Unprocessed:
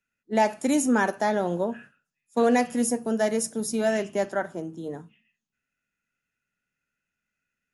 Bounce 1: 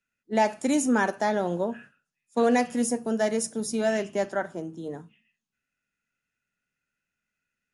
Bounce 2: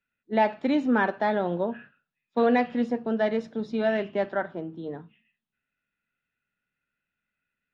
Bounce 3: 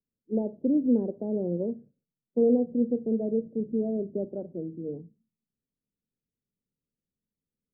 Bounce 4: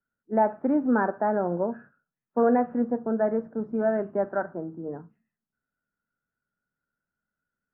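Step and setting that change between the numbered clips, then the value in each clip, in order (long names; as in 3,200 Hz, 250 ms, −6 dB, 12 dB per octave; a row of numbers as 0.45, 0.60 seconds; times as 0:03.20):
Chebyshev low-pass filter, frequency: 10,000, 3,900, 500, 1,500 Hertz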